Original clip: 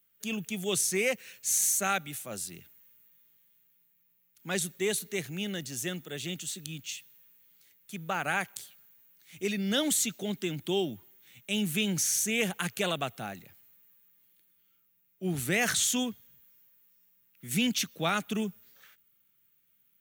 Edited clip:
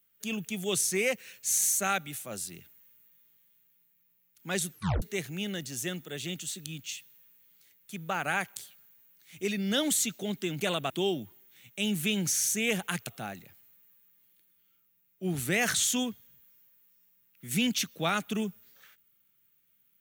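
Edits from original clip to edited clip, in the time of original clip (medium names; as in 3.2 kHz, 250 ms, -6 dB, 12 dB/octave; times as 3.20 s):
4.70 s: tape stop 0.32 s
12.78–13.07 s: move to 10.61 s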